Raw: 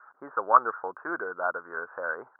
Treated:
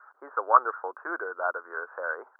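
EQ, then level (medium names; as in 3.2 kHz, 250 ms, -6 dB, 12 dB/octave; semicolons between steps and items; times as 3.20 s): high-pass 350 Hz 24 dB/octave; 0.0 dB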